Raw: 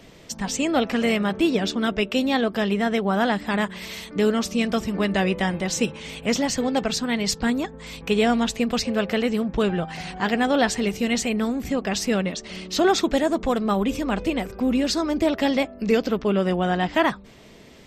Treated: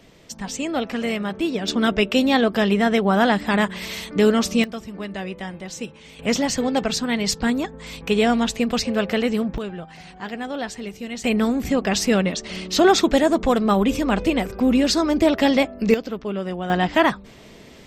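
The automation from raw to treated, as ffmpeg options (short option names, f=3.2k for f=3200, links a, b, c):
-af "asetnsamples=n=441:p=0,asendcmd='1.68 volume volume 4dB;4.64 volume volume -8.5dB;6.19 volume volume 1.5dB;9.58 volume volume -8.5dB;11.24 volume volume 4dB;15.94 volume volume -5.5dB;16.7 volume volume 3dB',volume=-3dB"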